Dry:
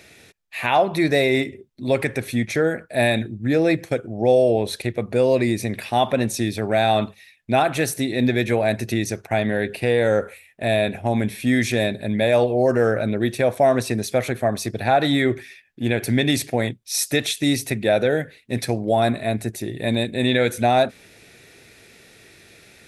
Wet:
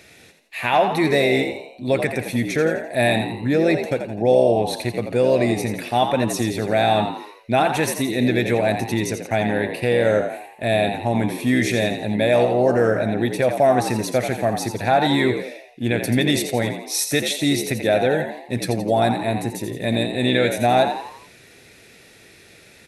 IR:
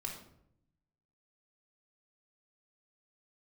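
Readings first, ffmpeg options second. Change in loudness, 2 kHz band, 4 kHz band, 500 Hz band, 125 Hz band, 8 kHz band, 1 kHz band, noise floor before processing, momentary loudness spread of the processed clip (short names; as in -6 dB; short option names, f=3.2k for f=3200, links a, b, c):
+1.0 dB, +1.0 dB, +1.0 dB, +1.0 dB, 0.0 dB, +1.0 dB, +2.0 dB, -51 dBFS, 7 LU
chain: -filter_complex "[0:a]asplit=6[a][b][c][d][e][f];[b]adelay=85,afreqshift=69,volume=-8dB[g];[c]adelay=170,afreqshift=138,volume=-14.6dB[h];[d]adelay=255,afreqshift=207,volume=-21.1dB[i];[e]adelay=340,afreqshift=276,volume=-27.7dB[j];[f]adelay=425,afreqshift=345,volume=-34.2dB[k];[a][g][h][i][j][k]amix=inputs=6:normalize=0"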